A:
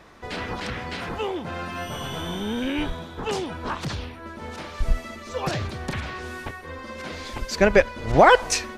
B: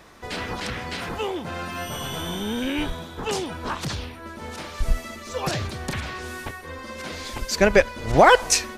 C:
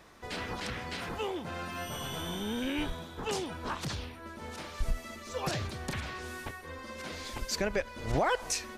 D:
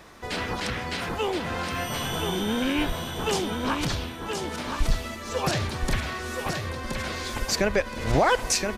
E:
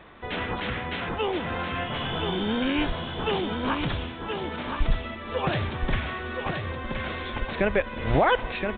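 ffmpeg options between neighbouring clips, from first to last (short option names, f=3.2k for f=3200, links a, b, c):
-af "highshelf=f=6k:g=10"
-af "alimiter=limit=-12.5dB:level=0:latency=1:release=211,volume=-7dB"
-af "aecho=1:1:1022|2044|3066|4088:0.531|0.165|0.051|0.0158,volume=7.5dB"
-af "aresample=8000,aresample=44100"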